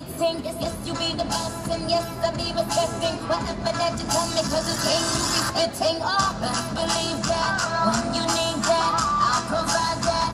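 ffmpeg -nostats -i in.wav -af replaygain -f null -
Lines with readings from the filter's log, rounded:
track_gain = +4.7 dB
track_peak = 0.292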